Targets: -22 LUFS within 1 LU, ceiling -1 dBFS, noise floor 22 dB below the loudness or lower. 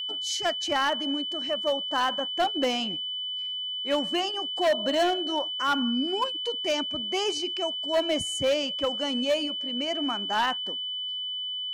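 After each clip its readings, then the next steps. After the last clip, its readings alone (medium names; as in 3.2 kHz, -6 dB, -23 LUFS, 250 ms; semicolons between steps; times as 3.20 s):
clipped samples 1.0%; clipping level -19.0 dBFS; steady tone 3 kHz; tone level -30 dBFS; loudness -27.0 LUFS; peak level -19.0 dBFS; loudness target -22.0 LUFS
-> clip repair -19 dBFS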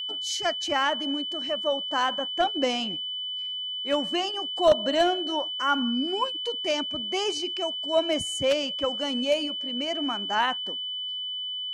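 clipped samples 0.0%; steady tone 3 kHz; tone level -30 dBFS
-> band-stop 3 kHz, Q 30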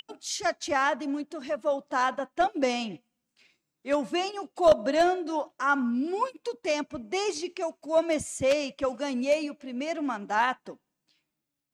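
steady tone not found; loudness -28.0 LUFS; peak level -9.5 dBFS; loudness target -22.0 LUFS
-> trim +6 dB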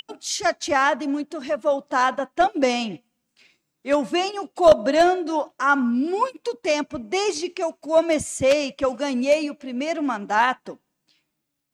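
loudness -22.0 LUFS; peak level -3.5 dBFS; noise floor -78 dBFS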